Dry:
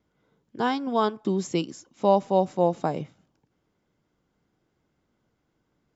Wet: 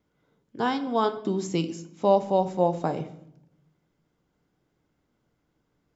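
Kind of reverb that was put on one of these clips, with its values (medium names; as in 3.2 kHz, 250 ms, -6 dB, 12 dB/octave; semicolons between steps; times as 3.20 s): simulated room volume 170 m³, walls mixed, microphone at 0.33 m; trim -1 dB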